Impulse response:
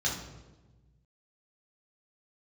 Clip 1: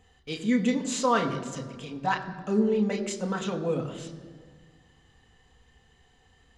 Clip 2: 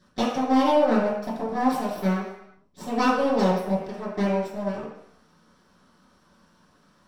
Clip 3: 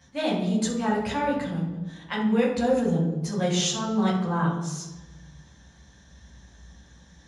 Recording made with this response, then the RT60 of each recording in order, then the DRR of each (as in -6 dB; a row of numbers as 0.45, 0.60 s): 3; 1.7, 0.75, 1.2 s; 2.5, -9.0, -5.0 dB